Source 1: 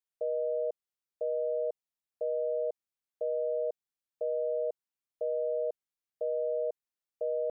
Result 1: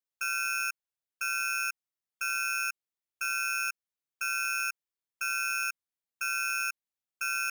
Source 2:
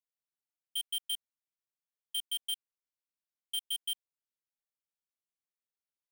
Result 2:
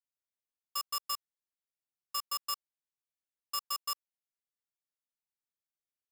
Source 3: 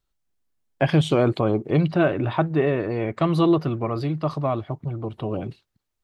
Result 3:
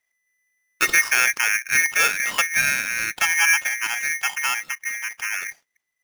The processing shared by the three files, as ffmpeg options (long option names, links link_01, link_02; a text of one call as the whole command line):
ffmpeg -i in.wav -af "aeval=exprs='val(0)*sgn(sin(2*PI*2000*n/s))':channel_layout=same" out.wav